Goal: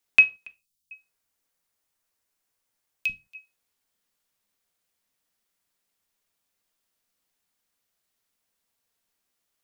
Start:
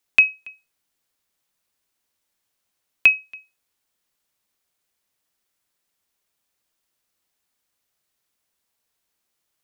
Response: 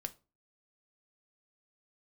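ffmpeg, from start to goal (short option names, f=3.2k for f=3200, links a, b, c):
-filter_complex "[0:a]asettb=1/sr,asplit=3[a][b][c];[a]atrim=end=0.474[d];[b]atrim=start=0.47:end=3.35,asetpts=PTS-STARTPTS,afade=t=in:d=0.004:c=qsin,afade=t=out:st=2.876:d=0.004:c=qsin,acrossover=split=220|3400[e][f][g];[e]adelay=40[h];[f]adelay=440[i];[h][i][g]amix=inputs=3:normalize=0,atrim=end_sample=127008[j];[c]atrim=start=3.346[k];[d][j]acrossfade=d=0.004:c1=hsin:c2=qsin[l];[l][k]acrossfade=d=0.004:c1=qsin:c2=hsin[m];[1:a]atrim=start_sample=2205,afade=t=out:st=0.23:d=0.01,atrim=end_sample=10584[n];[m][n]afir=irnorm=-1:irlink=0"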